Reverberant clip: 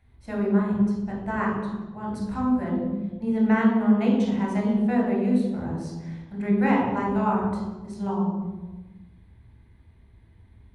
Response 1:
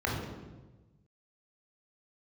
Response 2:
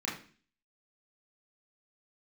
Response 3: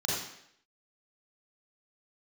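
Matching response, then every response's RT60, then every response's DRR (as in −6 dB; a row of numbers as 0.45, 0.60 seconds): 1; 1.2, 0.40, 0.70 seconds; −3.0, −6.5, −6.5 decibels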